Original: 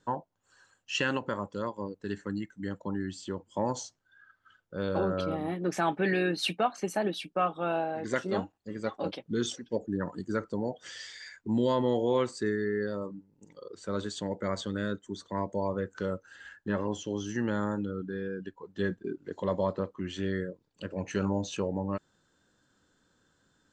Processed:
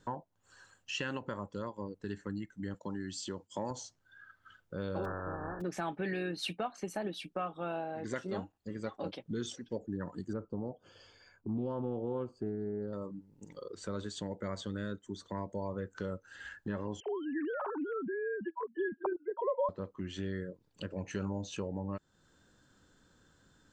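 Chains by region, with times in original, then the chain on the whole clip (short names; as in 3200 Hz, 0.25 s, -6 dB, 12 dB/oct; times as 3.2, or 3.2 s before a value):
2.74–3.71 HPF 140 Hz 6 dB/oct + bell 5900 Hz +9 dB 1.7 oct + expander -56 dBFS
5.04–5.6 spectral contrast lowered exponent 0.35 + brick-wall FIR low-pass 1800 Hz + bell 210 Hz -5.5 dB 0.8 oct
10.33–12.93 running mean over 23 samples + Doppler distortion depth 0.21 ms
17–19.69 sine-wave speech + LPF 1500 Hz 6 dB/oct + bell 880 Hz +14.5 dB 1.7 oct
whole clip: low shelf 110 Hz +8 dB; compressor 2:1, threshold -45 dBFS; gain +2.5 dB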